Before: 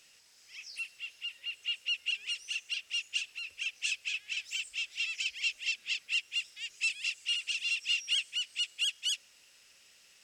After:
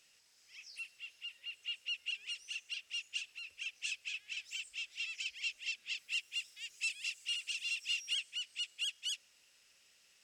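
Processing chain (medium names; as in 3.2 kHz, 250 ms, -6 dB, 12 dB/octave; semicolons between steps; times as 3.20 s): 5.97–8.14 s: treble shelf 9.1 kHz +9.5 dB; trim -6.5 dB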